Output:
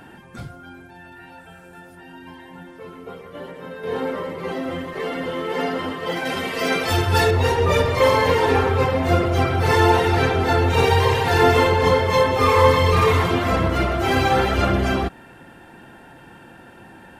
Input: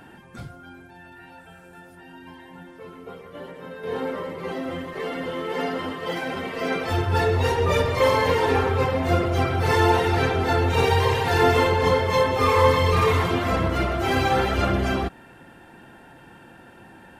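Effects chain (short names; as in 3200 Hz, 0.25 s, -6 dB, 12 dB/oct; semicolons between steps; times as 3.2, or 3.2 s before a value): 6.25–7.31 high shelf 2900 Hz +10.5 dB; gain +3 dB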